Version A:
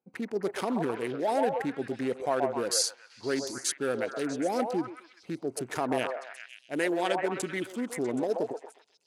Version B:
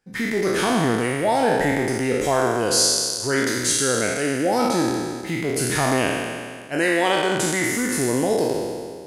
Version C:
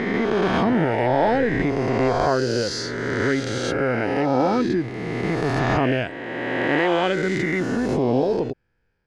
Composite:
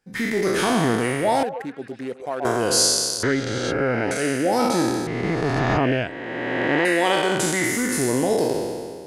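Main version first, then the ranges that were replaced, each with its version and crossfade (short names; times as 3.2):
B
1.43–2.45 from A
3.23–4.11 from C
5.07–6.85 from C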